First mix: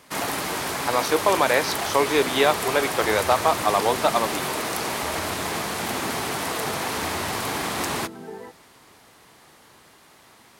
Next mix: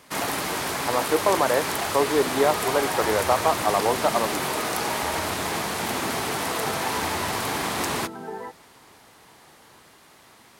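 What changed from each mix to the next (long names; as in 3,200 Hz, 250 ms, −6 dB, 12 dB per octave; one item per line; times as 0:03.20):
speech: add moving average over 16 samples
second sound: add parametric band 1,100 Hz +9.5 dB 1.3 octaves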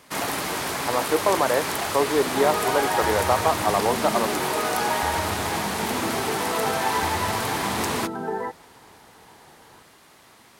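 second sound +6.5 dB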